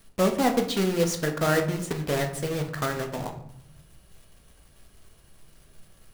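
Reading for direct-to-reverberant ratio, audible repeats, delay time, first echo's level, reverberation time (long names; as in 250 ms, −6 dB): 4.0 dB, no echo audible, no echo audible, no echo audible, 0.70 s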